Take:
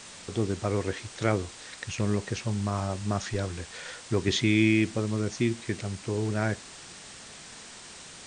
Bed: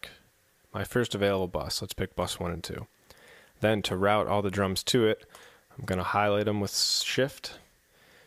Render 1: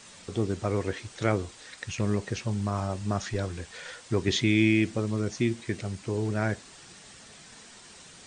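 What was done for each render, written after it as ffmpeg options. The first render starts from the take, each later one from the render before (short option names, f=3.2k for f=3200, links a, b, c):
-af "afftdn=nr=6:nf=-46"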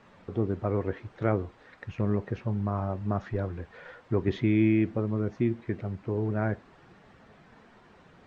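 -af "lowpass=1.4k"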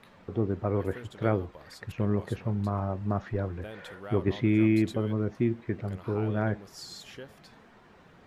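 -filter_complex "[1:a]volume=-18dB[a];[0:a][a]amix=inputs=2:normalize=0"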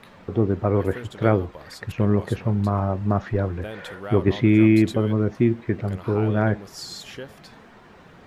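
-af "volume=7.5dB"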